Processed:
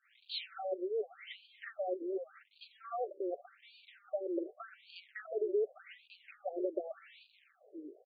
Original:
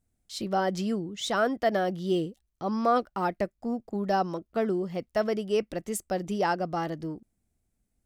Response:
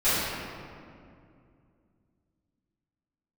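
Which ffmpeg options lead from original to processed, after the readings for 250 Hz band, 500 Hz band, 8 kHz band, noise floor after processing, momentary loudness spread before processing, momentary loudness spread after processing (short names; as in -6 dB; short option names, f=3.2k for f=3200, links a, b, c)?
-14.5 dB, -8.5 dB, under -40 dB, -70 dBFS, 9 LU, 20 LU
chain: -filter_complex "[0:a]aeval=exprs='val(0)+0.5*0.01*sgn(val(0))':c=same,agate=range=-8dB:threshold=-41dB:ratio=16:detection=peak,equalizer=f=430:w=3.9:g=3.5,aecho=1:1:5.2:0.4,alimiter=limit=-22dB:level=0:latency=1:release=58,acrossover=split=520|3400[a][b][c];[a]acompressor=threshold=-32dB:ratio=4[d];[b]acompressor=threshold=-34dB:ratio=4[e];[c]acompressor=threshold=-58dB:ratio=4[f];[d][e][f]amix=inputs=3:normalize=0,acrossover=split=250|1800[g][h][i];[h]adelay=40[j];[g]adelay=720[k];[k][j][i]amix=inputs=3:normalize=0,acompressor=threshold=-35dB:ratio=6,flanger=delay=1.4:depth=4:regen=-63:speed=0.33:shape=triangular,asuperstop=centerf=950:order=8:qfactor=1.9,afftfilt=real='re*between(b*sr/1024,400*pow(3400/400,0.5+0.5*sin(2*PI*0.86*pts/sr))/1.41,400*pow(3400/400,0.5+0.5*sin(2*PI*0.86*pts/sr))*1.41)':imag='im*between(b*sr/1024,400*pow(3400/400,0.5+0.5*sin(2*PI*0.86*pts/sr))/1.41,400*pow(3400/400,0.5+0.5*sin(2*PI*0.86*pts/sr))*1.41)':win_size=1024:overlap=0.75,volume=11dB"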